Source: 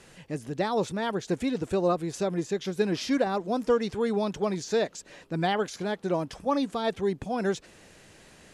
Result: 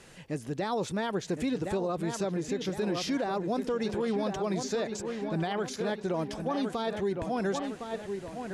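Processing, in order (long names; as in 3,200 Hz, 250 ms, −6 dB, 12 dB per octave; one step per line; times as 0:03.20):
delay with a low-pass on its return 1,060 ms, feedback 47%, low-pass 3,200 Hz, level −9 dB
brickwall limiter −22.5 dBFS, peak gain reduction 9.5 dB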